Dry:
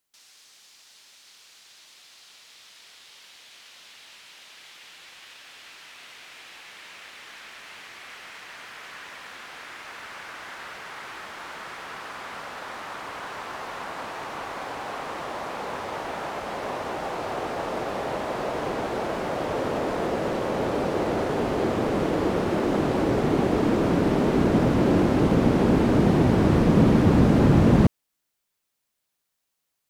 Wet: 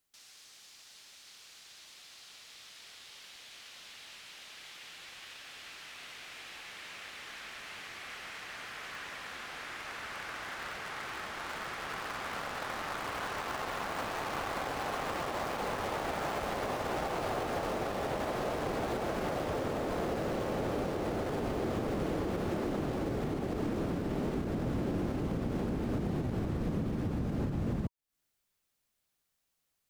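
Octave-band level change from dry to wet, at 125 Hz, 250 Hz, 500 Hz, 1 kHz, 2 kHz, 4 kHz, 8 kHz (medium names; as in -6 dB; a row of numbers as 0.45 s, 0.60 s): -12.0 dB, -13.0 dB, -10.0 dB, -7.0 dB, -5.0 dB, -4.5 dB, -4.0 dB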